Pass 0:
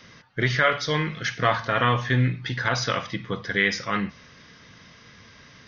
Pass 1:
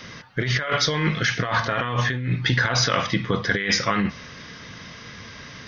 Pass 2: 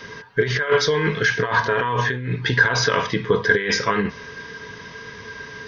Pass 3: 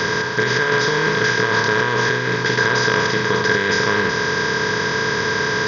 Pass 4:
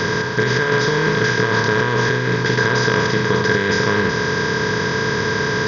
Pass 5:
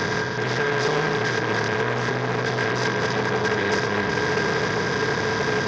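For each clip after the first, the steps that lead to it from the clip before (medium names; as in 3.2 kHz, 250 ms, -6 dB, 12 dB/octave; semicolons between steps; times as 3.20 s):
compressor with a negative ratio -28 dBFS, ratio -1; trim +5.5 dB
small resonant body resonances 430/970/1600 Hz, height 18 dB, ringing for 100 ms; trim -1.5 dB
spectral levelling over time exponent 0.2; trim -7 dB
bass shelf 360 Hz +7.5 dB; trim -1.5 dB
peak limiter -8.5 dBFS, peak gain reduction 7 dB; repeats whose band climbs or falls 426 ms, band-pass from 310 Hz, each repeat 0.7 oct, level -1.5 dB; transformer saturation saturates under 1.3 kHz; trim -1.5 dB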